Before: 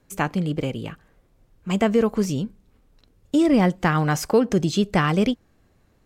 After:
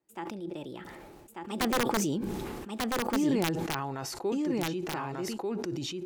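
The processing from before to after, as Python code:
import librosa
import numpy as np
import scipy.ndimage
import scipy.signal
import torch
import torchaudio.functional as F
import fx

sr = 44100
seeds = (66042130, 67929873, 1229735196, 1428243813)

p1 = fx.doppler_pass(x, sr, speed_mps=42, closest_m=19.0, pass_at_s=2.29)
p2 = fx.highpass(p1, sr, hz=240.0, slope=6)
p3 = fx.small_body(p2, sr, hz=(350.0, 840.0), ring_ms=55, db=12)
p4 = (np.mod(10.0 ** (15.5 / 20.0) * p3 + 1.0, 2.0) - 1.0) / 10.0 ** (15.5 / 20.0)
p5 = p4 + fx.echo_single(p4, sr, ms=1191, db=-3.0, dry=0)
p6 = fx.sustainer(p5, sr, db_per_s=22.0)
y = p6 * 10.0 ** (-5.5 / 20.0)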